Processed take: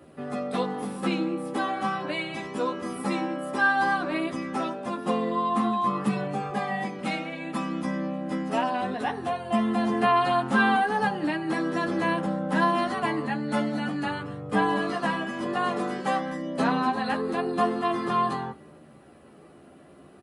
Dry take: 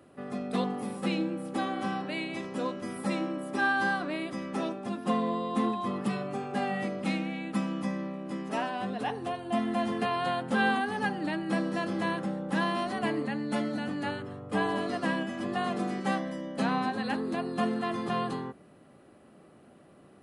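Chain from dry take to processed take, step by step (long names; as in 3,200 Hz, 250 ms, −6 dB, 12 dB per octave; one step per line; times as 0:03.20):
in parallel at −2.5 dB: downward compressor, threshold −35 dBFS, peak gain reduction 12.5 dB
on the sum: far-end echo of a speakerphone 190 ms, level −20 dB
multi-voice chorus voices 2, 0.24 Hz, delay 13 ms, depth 1.5 ms
dynamic equaliser 1,100 Hz, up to +5 dB, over −44 dBFS, Q 1.2
0:06.50–0:06.99: notch comb filter 1,400 Hz
level +3 dB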